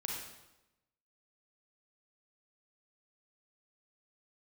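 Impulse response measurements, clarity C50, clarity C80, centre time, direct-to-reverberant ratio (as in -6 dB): 0.0 dB, 3.5 dB, 61 ms, -1.5 dB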